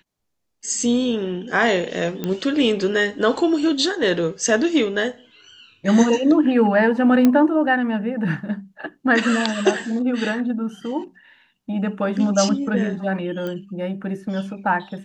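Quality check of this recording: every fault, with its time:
2.24 s: pop -12 dBFS
7.25 s: pop -5 dBFS
13.47 s: pop -17 dBFS

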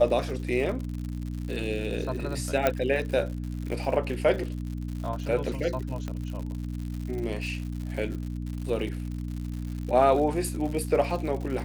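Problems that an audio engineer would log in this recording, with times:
crackle 120 per s -34 dBFS
hum 60 Hz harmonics 5 -33 dBFS
2.67 s: pop -9 dBFS
6.08 s: pop -21 dBFS

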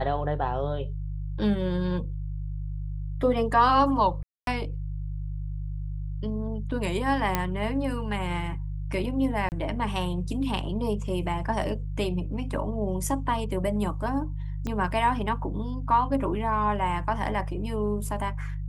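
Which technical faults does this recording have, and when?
hum 50 Hz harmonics 3 -32 dBFS
4.23–4.47 s: dropout 242 ms
7.35 s: pop -9 dBFS
9.49–9.52 s: dropout 29 ms
14.67 s: pop -19 dBFS

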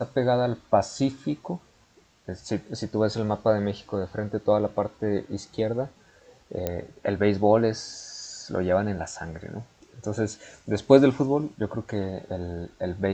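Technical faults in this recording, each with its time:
6.67 s: pop -13 dBFS

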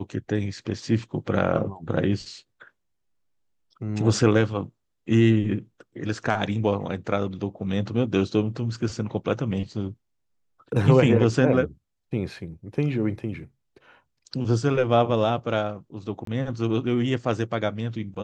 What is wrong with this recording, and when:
16.25–16.27 s: dropout 23 ms

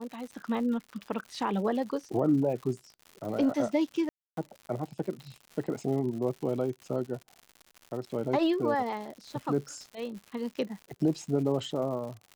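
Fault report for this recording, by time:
crackle 160 per s -39 dBFS
4.09–4.37 s: dropout 282 ms

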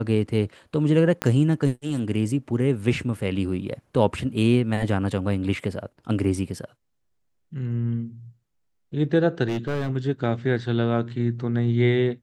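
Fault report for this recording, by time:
1.22 s: pop -9 dBFS
9.48–9.91 s: clipped -21.5 dBFS

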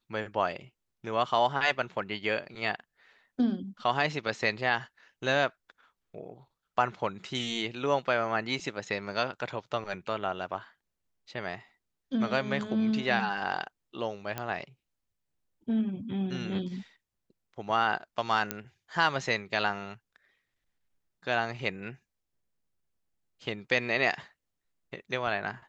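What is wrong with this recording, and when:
14.38 s: pop -18 dBFS
18.51 s: pop -12 dBFS

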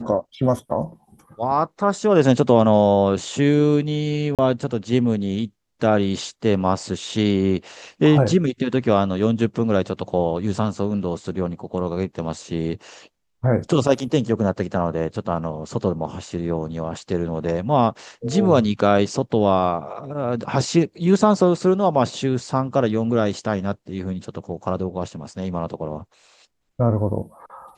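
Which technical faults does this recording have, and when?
4.35–4.39 s: dropout 37 ms

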